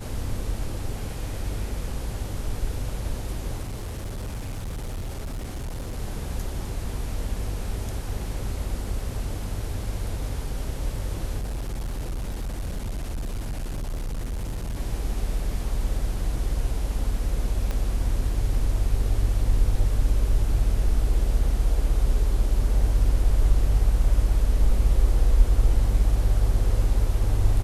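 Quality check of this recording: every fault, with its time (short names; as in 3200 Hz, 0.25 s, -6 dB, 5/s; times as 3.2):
3.63–5.99 clipped -28 dBFS
11.41–14.76 clipped -26 dBFS
17.71 pop -16 dBFS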